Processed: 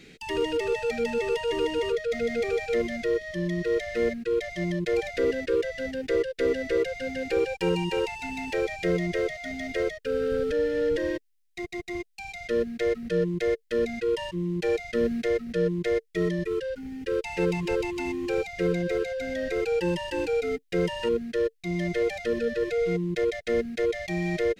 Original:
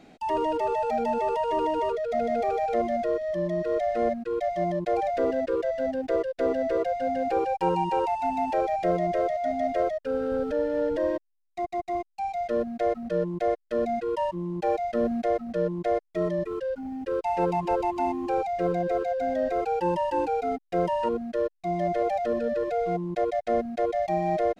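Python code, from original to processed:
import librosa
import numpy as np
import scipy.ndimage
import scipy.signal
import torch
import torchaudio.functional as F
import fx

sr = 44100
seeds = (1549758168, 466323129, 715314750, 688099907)

y = fx.curve_eq(x, sr, hz=(160.0, 270.0, 450.0, 680.0, 1100.0, 1900.0), db=(0, -8, 1, -22, -12, 4))
y = y * librosa.db_to_amplitude(5.0)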